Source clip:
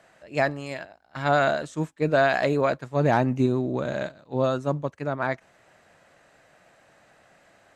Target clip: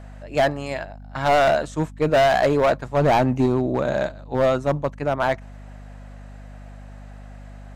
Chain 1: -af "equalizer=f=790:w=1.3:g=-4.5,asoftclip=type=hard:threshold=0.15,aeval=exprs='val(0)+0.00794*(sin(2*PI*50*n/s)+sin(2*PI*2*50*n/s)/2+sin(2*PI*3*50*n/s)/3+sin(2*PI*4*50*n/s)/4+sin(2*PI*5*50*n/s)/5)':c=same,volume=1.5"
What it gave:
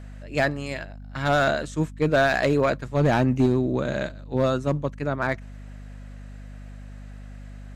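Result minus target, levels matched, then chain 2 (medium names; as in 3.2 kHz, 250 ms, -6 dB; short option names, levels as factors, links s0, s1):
1 kHz band -3.0 dB
-af "equalizer=f=790:w=1.3:g=5.5,asoftclip=type=hard:threshold=0.15,aeval=exprs='val(0)+0.00794*(sin(2*PI*50*n/s)+sin(2*PI*2*50*n/s)/2+sin(2*PI*3*50*n/s)/3+sin(2*PI*4*50*n/s)/4+sin(2*PI*5*50*n/s)/5)':c=same,volume=1.5"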